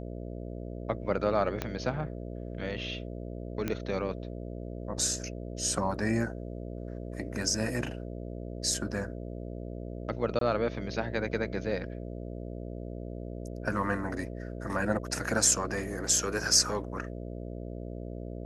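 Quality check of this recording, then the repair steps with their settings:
mains buzz 60 Hz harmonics 11 −39 dBFS
0:01.62: click −16 dBFS
0:03.68: click −17 dBFS
0:10.39–0:10.41: drop-out 23 ms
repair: click removal
hum removal 60 Hz, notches 11
repair the gap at 0:10.39, 23 ms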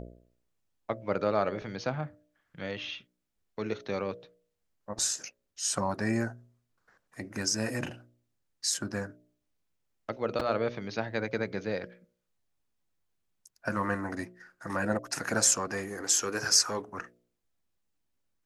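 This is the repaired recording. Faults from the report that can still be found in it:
0:01.62: click

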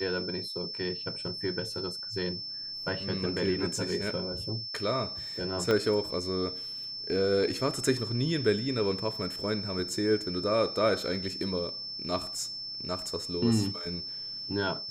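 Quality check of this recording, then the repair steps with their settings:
whistle 5,300 Hz −36 dBFS
0:05.71: click −15 dBFS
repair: click removal
notch filter 5,300 Hz, Q 30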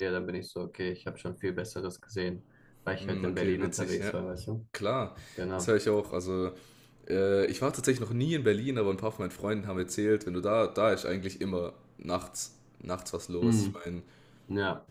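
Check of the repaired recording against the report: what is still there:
0:05.71: click

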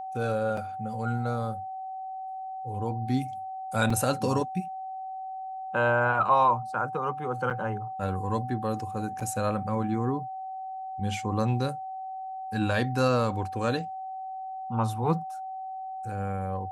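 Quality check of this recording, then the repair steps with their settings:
whistle 760 Hz −34 dBFS
0:00.57: drop-out 3.5 ms
0:03.90: drop-out 3.6 ms
0:07.50–0:07.51: drop-out 7.9 ms
0:09.20–0:09.21: drop-out 5.7 ms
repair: notch filter 760 Hz, Q 30
repair the gap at 0:00.57, 3.5 ms
repair the gap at 0:03.90, 3.6 ms
repair the gap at 0:07.50, 7.9 ms
repair the gap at 0:09.20, 5.7 ms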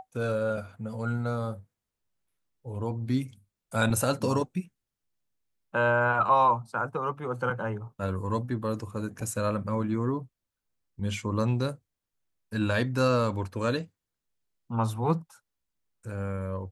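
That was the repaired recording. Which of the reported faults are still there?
none of them is left

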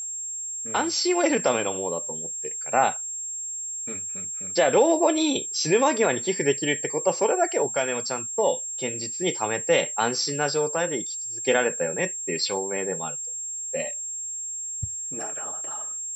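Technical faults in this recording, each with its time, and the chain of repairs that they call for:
whistle 7,500 Hz −30 dBFS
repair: notch filter 7,500 Hz, Q 30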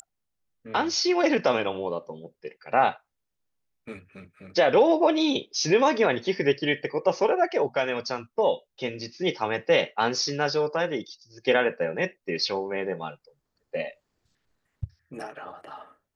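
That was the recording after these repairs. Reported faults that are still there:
none of them is left

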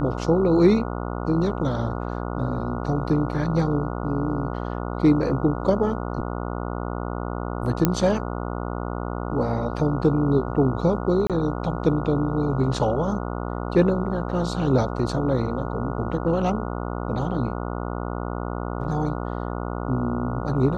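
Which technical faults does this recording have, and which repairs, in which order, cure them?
mains buzz 60 Hz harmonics 24 −29 dBFS
0:07.85: click −4 dBFS
0:11.27–0:11.30: drop-out 27 ms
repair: click removal
hum removal 60 Hz, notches 24
repair the gap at 0:11.27, 27 ms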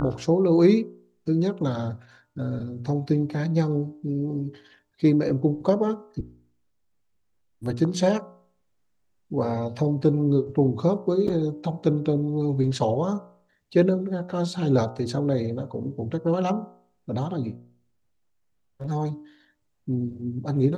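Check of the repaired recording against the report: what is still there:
none of them is left

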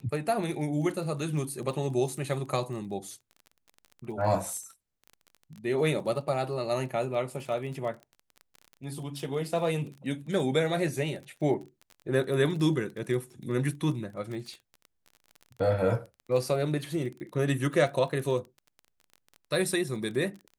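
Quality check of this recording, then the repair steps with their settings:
surface crackle 24 per second −37 dBFS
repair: click removal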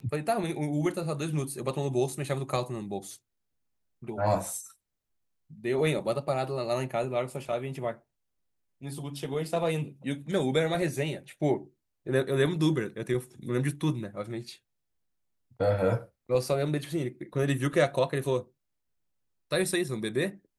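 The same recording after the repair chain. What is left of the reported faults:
none of them is left

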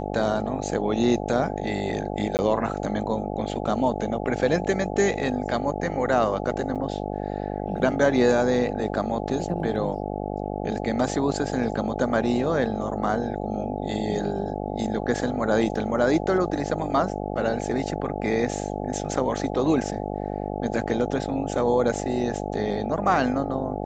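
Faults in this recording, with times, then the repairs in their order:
mains buzz 50 Hz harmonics 17 −30 dBFS
0:02.37–0:02.39: drop-out 19 ms
0:06.75–0:06.76: drop-out 6.9 ms
0:15.75: drop-out 2.6 ms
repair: hum removal 50 Hz, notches 17
repair the gap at 0:02.37, 19 ms
repair the gap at 0:06.75, 6.9 ms
repair the gap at 0:15.75, 2.6 ms

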